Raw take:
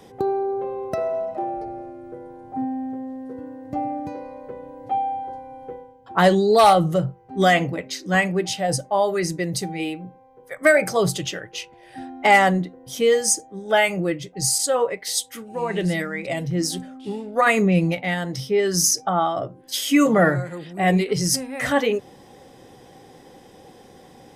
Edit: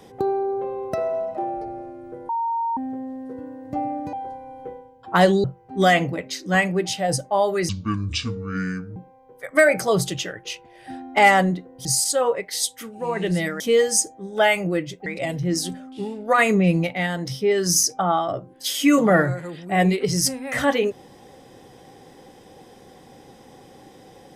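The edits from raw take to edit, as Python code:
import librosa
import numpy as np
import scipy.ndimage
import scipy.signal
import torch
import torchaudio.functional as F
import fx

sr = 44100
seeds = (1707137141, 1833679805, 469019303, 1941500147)

y = fx.edit(x, sr, fx.bleep(start_s=2.29, length_s=0.48, hz=923.0, db=-21.0),
    fx.cut(start_s=4.13, length_s=1.03),
    fx.cut(start_s=6.47, length_s=0.57),
    fx.speed_span(start_s=9.29, length_s=0.75, speed=0.59),
    fx.move(start_s=12.93, length_s=1.46, to_s=16.14), tone=tone)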